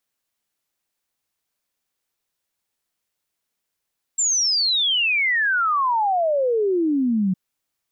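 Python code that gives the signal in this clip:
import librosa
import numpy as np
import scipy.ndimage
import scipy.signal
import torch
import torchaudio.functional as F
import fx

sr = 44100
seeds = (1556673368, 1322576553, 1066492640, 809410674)

y = fx.ess(sr, length_s=3.16, from_hz=7500.0, to_hz=180.0, level_db=-17.0)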